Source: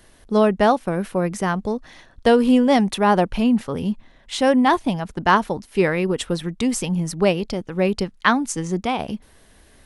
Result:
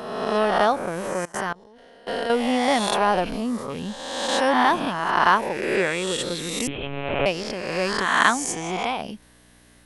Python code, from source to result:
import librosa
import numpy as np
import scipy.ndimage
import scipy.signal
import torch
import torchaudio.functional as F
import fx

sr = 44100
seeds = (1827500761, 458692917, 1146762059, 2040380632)

y = fx.spec_swells(x, sr, rise_s=1.49)
y = fx.peak_eq(y, sr, hz=2700.0, db=-14.0, octaves=0.53, at=(3.29, 3.7))
y = fx.lpc_monotone(y, sr, seeds[0], pitch_hz=140.0, order=8, at=(6.67, 7.26))
y = fx.low_shelf(y, sr, hz=320.0, db=-10.0)
y = fx.dmg_buzz(y, sr, base_hz=60.0, harmonics=5, level_db=-54.0, tilt_db=-1, odd_only=False)
y = fx.level_steps(y, sr, step_db=23, at=(1.25, 2.3))
y = y * librosa.db_to_amplitude(-3.5)